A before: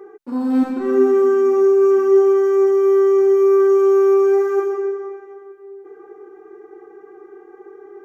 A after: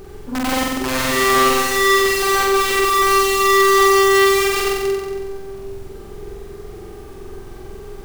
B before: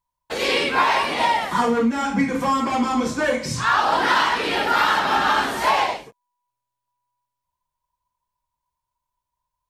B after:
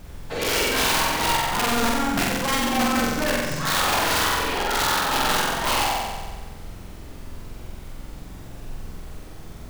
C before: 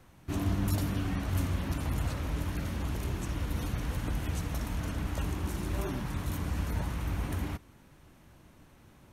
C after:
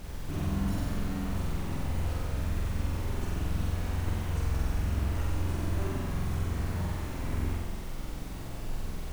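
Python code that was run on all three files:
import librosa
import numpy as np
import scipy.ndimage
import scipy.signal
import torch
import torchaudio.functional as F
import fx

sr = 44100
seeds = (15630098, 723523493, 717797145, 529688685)

y = scipy.signal.sosfilt(scipy.signal.butter(4, 11000.0, 'lowpass', fs=sr, output='sos'), x)
y = fx.high_shelf(y, sr, hz=3700.0, db=-6.0)
y = fx.rider(y, sr, range_db=4, speed_s=2.0)
y = (np.mod(10.0 ** (13.5 / 20.0) * y + 1.0, 2.0) - 1.0) / 10.0 ** (13.5 / 20.0)
y = fx.dmg_noise_colour(y, sr, seeds[0], colour='brown', level_db=-33.0)
y = fx.quant_dither(y, sr, seeds[1], bits=8, dither='none')
y = fx.room_flutter(y, sr, wall_m=7.9, rt60_s=1.3)
y = y * librosa.db_to_amplitude(-5.5)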